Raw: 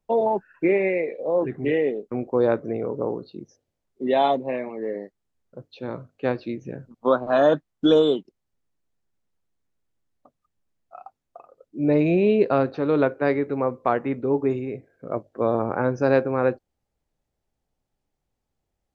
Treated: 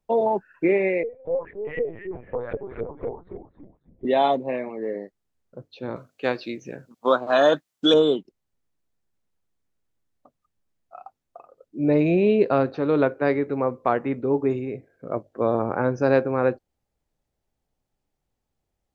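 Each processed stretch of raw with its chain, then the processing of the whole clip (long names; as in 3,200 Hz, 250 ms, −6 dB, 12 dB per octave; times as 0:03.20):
0:01.03–0:04.05: auto-filter band-pass saw up 4 Hz 370–2,400 Hz + echo with shifted repeats 278 ms, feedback 36%, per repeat −100 Hz, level −7.5 dB + linear-prediction vocoder at 8 kHz pitch kept
0:05.96–0:07.94: high-pass filter 260 Hz 6 dB per octave + high-shelf EQ 2,200 Hz +11.5 dB
whole clip: no processing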